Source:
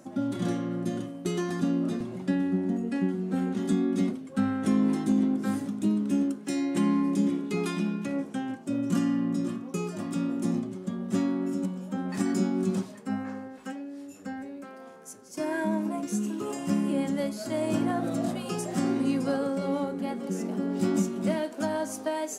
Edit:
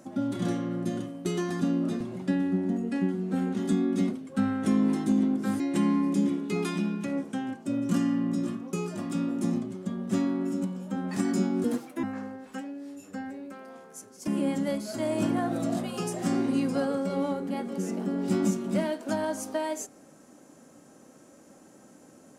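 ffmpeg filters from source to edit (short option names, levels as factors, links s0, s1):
-filter_complex "[0:a]asplit=5[s0][s1][s2][s3][s4];[s0]atrim=end=5.602[s5];[s1]atrim=start=6.608:end=12.654[s6];[s2]atrim=start=12.65:end=13.15,asetpts=PTS-STARTPTS,asetrate=56007,aresample=44100,atrim=end_sample=17362,asetpts=PTS-STARTPTS[s7];[s3]atrim=start=13.146:end=15.392[s8];[s4]atrim=start=16.788[s9];[s5][s6]acrossfade=d=0.004:c1=hsin:c2=hsin[s10];[s10][s7]acrossfade=d=0.004:c1=hsin:c2=hsin[s11];[s11][s8]acrossfade=d=0.004:c1=hsin:c2=hsin[s12];[s12][s9]acrossfade=d=0.004:c1=hsin:c2=hsin"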